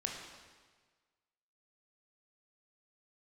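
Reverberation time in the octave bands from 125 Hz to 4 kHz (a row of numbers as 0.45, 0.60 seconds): 1.6, 1.4, 1.5, 1.5, 1.4, 1.3 seconds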